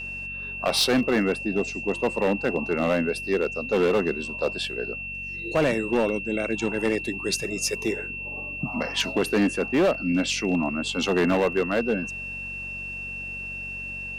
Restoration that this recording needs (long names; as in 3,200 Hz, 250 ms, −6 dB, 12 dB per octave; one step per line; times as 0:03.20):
clipped peaks rebuilt −16 dBFS
hum removal 46.9 Hz, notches 5
notch filter 2,700 Hz, Q 30